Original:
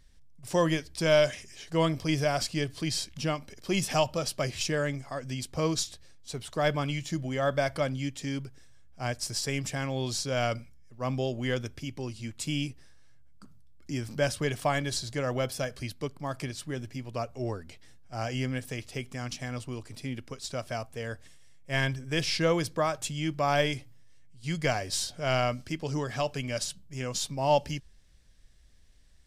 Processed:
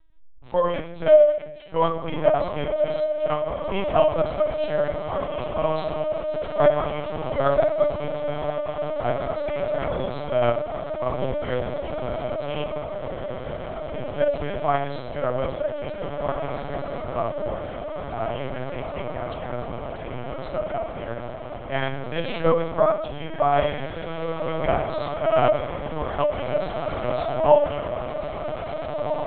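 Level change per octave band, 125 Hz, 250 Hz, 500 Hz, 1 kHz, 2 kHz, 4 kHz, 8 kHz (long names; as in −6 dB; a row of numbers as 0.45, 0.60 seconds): −0.5 dB, +0.5 dB, +10.0 dB, +8.0 dB, −0.5 dB, −4.5 dB, below −40 dB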